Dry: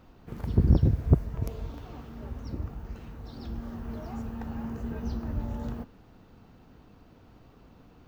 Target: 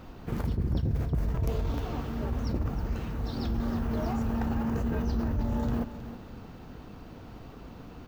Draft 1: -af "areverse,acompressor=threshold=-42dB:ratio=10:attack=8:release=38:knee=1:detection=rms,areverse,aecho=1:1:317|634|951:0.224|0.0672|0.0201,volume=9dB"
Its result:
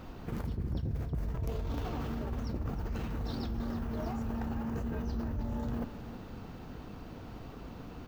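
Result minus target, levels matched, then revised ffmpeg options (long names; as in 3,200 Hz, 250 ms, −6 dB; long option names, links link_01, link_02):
downward compressor: peak gain reduction +6.5 dB
-af "areverse,acompressor=threshold=-35dB:ratio=10:attack=8:release=38:knee=1:detection=rms,areverse,aecho=1:1:317|634|951:0.224|0.0672|0.0201,volume=9dB"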